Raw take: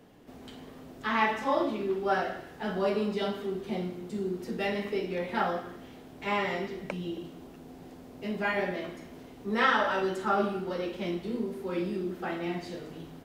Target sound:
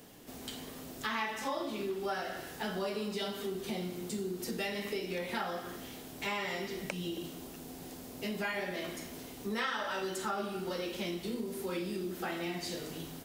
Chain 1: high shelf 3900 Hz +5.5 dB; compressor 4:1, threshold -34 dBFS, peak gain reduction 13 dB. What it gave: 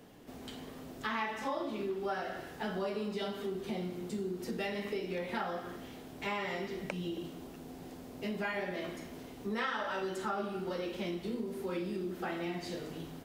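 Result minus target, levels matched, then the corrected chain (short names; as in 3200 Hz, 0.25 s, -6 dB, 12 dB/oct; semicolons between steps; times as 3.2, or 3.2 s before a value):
8000 Hz band -8.5 dB
high shelf 3900 Hz +17.5 dB; compressor 4:1, threshold -34 dBFS, peak gain reduction 14 dB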